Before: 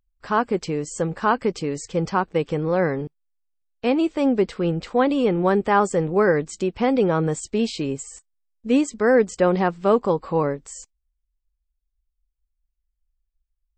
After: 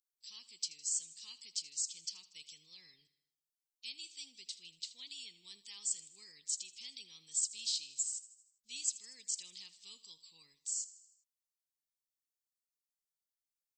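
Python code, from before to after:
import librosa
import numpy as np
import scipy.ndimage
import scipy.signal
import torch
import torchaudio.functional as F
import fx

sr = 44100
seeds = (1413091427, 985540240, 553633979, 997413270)

p1 = scipy.signal.sosfilt(scipy.signal.cheby2(4, 50, 1600.0, 'highpass', fs=sr, output='sos'), x)
p2 = p1 + fx.echo_feedback(p1, sr, ms=79, feedback_pct=57, wet_db=-17, dry=0)
y = p2 * 10.0 ** (1.0 / 20.0)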